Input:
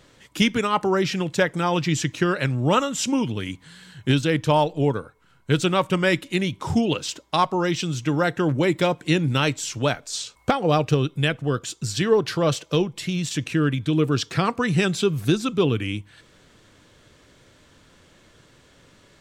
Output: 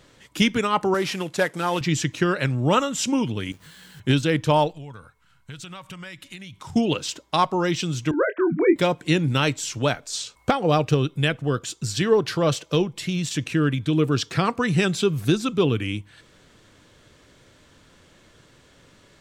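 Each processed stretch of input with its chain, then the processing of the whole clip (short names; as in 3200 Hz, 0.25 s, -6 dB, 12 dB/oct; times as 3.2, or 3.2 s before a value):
0.94–1.81 CVSD 64 kbps + HPF 290 Hz 6 dB/oct + mismatched tape noise reduction decoder only
3.52–4 companded quantiser 4-bit + compressor 4:1, threshold -44 dBFS + doubler 20 ms -2.5 dB
4.71–6.76 bell 380 Hz -13 dB 1.8 oct + compressor 8:1, threshold -35 dBFS
8.11–8.76 sine-wave speech + Butterworth band-stop 810 Hz, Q 4.2 + doubler 24 ms -7 dB
whole clip: dry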